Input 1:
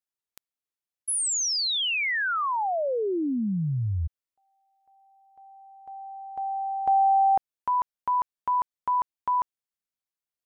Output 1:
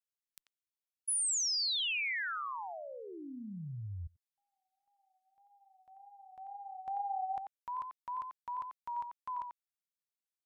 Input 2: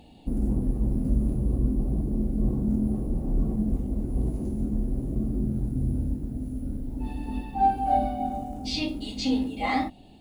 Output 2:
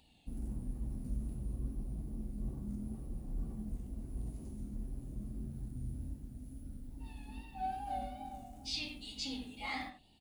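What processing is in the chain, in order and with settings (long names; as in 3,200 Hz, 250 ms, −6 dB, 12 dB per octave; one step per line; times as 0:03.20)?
tape wow and flutter 67 cents
guitar amp tone stack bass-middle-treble 5-5-5
far-end echo of a speakerphone 90 ms, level −6 dB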